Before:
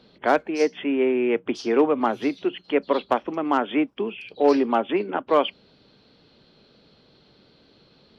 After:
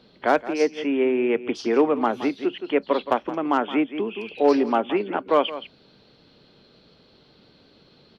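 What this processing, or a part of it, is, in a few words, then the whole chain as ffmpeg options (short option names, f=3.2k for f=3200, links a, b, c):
ducked delay: -filter_complex "[0:a]asplit=3[a][b][c];[b]adelay=170,volume=-4.5dB[d];[c]apad=whole_len=368499[e];[d][e]sidechaincompress=threshold=-29dB:ratio=10:attack=5.6:release=311[f];[a][f]amix=inputs=2:normalize=0"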